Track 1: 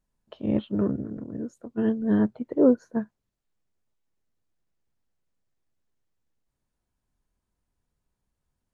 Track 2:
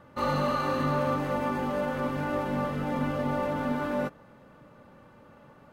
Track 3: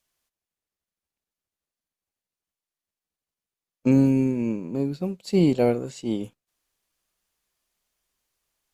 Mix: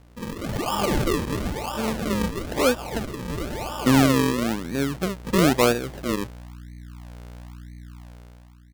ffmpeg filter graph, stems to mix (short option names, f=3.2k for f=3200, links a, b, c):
-filter_complex "[0:a]aecho=1:1:1.7:0.57,volume=-13.5dB[a];[1:a]highpass=f=860:w=0.5412,highpass=f=860:w=1.3066,dynaudnorm=f=260:g=7:m=5dB,volume=-0.5dB,afade=t=out:st=0.78:d=0.76:silence=0.354813[b];[2:a]tiltshelf=f=1.3k:g=-6,aeval=exprs='val(0)+0.00562*(sin(2*PI*60*n/s)+sin(2*PI*2*60*n/s)/2+sin(2*PI*3*60*n/s)/3+sin(2*PI*4*60*n/s)/4+sin(2*PI*5*60*n/s)/5)':c=same,volume=-5dB[c];[a][b][c]amix=inputs=3:normalize=0,highshelf=f=4.3k:g=-11.5,dynaudnorm=f=140:g=11:m=11.5dB,acrusher=samples=42:mix=1:aa=0.000001:lfo=1:lforange=42:lforate=1"